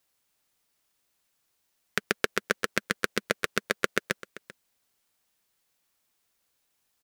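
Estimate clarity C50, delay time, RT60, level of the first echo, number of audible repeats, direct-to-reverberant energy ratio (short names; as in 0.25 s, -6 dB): none, 0.39 s, none, -18.0 dB, 1, none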